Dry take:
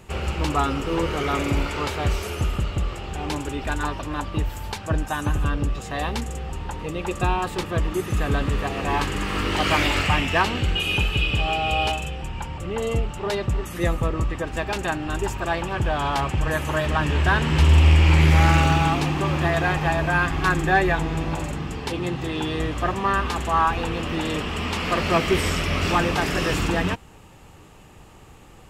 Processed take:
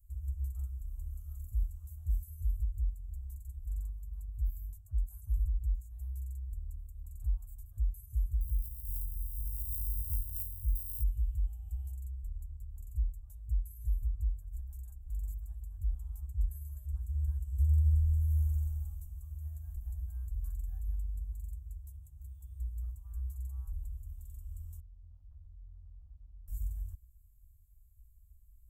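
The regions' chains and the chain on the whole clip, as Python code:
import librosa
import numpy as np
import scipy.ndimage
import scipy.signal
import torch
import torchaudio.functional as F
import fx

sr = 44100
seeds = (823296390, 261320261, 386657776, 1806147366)

y = fx.chain(x, sr, fx.sample_sort(block=16),
    fx.peak_eq(hz=680.0, db=-7.0, octaves=0.68), at=(8.41, 11.04))
y = fx.chain(y, sr, fx.formant_cascade(vowel='i'),
    fx.low_shelf(hz=300.0, db=10.0),
    fx.transformer_sat(knee_hz=1100.0), at=(24.8, 26.48))
y = scipy.signal.sosfilt(scipy.signal.cheby2(4, 50, [170.0, 4900.0], 'bandstop', fs=sr, output='sos'), y)
y = fx.peak_eq(y, sr, hz=10000.0, db=-13.5, octaves=0.25)
y = F.gain(torch.from_numpy(y), -5.5).numpy()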